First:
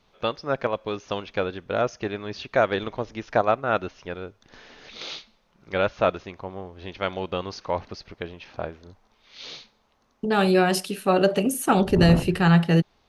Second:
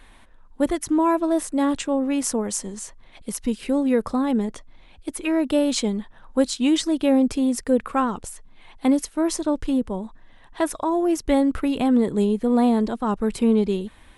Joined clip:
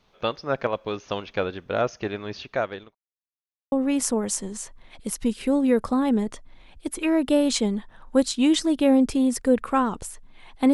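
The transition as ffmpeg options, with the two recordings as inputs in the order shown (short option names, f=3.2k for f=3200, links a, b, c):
-filter_complex "[0:a]apad=whole_dur=10.73,atrim=end=10.73,asplit=2[a][b];[a]atrim=end=2.95,asetpts=PTS-STARTPTS,afade=t=out:st=2.3:d=0.65[c];[b]atrim=start=2.95:end=3.72,asetpts=PTS-STARTPTS,volume=0[d];[1:a]atrim=start=1.94:end=8.95,asetpts=PTS-STARTPTS,afade=t=in:d=0.004:c=hsin[e];[c][d][e]concat=n=3:v=0:a=1"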